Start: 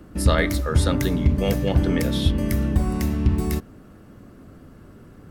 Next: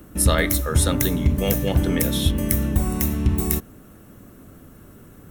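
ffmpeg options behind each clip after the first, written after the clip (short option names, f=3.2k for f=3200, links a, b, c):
-af "aemphasis=mode=production:type=50fm,bandreject=f=4.7k:w=5.4"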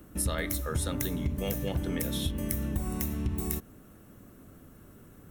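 -af "acompressor=threshold=-21dB:ratio=3,volume=-7dB"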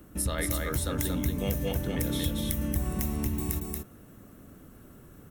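-af "aecho=1:1:231:0.668"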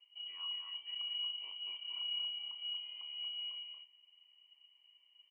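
-filter_complex "[0:a]asplit=3[a][b][c];[a]bandpass=f=300:t=q:w=8,volume=0dB[d];[b]bandpass=f=870:t=q:w=8,volume=-6dB[e];[c]bandpass=f=2.24k:t=q:w=8,volume=-9dB[f];[d][e][f]amix=inputs=3:normalize=0,asplit=2[g][h];[h]adelay=34,volume=-9dB[i];[g][i]amix=inputs=2:normalize=0,lowpass=f=2.7k:t=q:w=0.5098,lowpass=f=2.7k:t=q:w=0.6013,lowpass=f=2.7k:t=q:w=0.9,lowpass=f=2.7k:t=q:w=2.563,afreqshift=-3200,volume=-5dB"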